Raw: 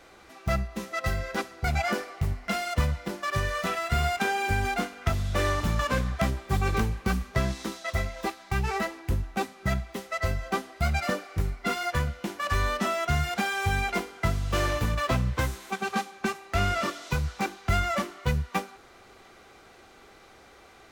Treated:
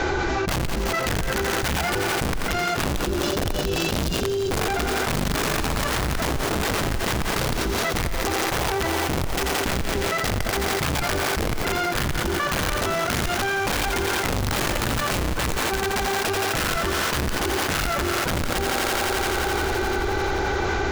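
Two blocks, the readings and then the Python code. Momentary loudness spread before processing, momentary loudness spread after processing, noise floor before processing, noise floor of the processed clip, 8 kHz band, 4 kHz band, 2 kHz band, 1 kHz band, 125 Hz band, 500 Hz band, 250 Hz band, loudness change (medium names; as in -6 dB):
6 LU, 2 LU, -53 dBFS, -25 dBFS, +12.0 dB, +10.0 dB, +6.5 dB, +5.0 dB, +1.0 dB, +7.5 dB, +6.0 dB, +5.0 dB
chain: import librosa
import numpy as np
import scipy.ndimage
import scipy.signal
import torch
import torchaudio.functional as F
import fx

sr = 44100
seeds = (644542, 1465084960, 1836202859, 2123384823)

y = fx.octave_divider(x, sr, octaves=2, level_db=3.0)
y = scipy.signal.sosfilt(scipy.signal.butter(16, 7300.0, 'lowpass', fs=sr, output='sos'), y)
y = fx.spec_box(y, sr, start_s=2.86, length_s=1.74, low_hz=600.0, high_hz=2500.0, gain_db=-27)
y = fx.low_shelf(y, sr, hz=68.0, db=11.0)
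y = fx.small_body(y, sr, hz=(380.0, 850.0, 1500.0), ring_ms=40, db=12)
y = (np.mod(10.0 ** (13.5 / 20.0) * y + 1.0, 2.0) - 1.0) / 10.0 ** (13.5 / 20.0)
y = fx.echo_thinned(y, sr, ms=86, feedback_pct=83, hz=160.0, wet_db=-15.0)
y = fx.env_flatten(y, sr, amount_pct=100)
y = y * 10.0 ** (-8.0 / 20.0)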